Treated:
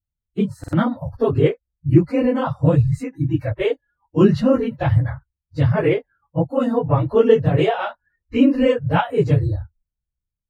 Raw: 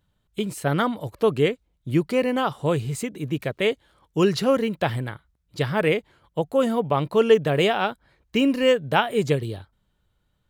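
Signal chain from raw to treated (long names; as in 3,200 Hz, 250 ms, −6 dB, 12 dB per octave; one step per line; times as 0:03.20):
random phases in long frames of 50 ms
noise reduction from a noise print of the clip's start 30 dB
RIAA equalisation playback
buffer that repeats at 0:00.59, samples 2,048, times 2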